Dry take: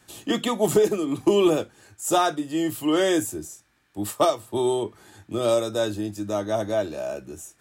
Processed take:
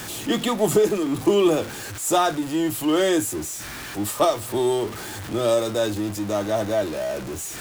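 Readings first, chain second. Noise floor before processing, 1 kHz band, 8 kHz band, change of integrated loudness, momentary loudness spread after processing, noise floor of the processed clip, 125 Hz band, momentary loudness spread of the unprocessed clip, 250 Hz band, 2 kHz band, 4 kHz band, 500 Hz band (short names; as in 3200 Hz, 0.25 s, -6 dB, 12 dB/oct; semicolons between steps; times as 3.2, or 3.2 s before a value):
-63 dBFS, +1.5 dB, +4.0 dB, +1.0 dB, 10 LU, -35 dBFS, +3.0 dB, 13 LU, +1.5 dB, +3.0 dB, +2.0 dB, +1.5 dB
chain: zero-crossing step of -29 dBFS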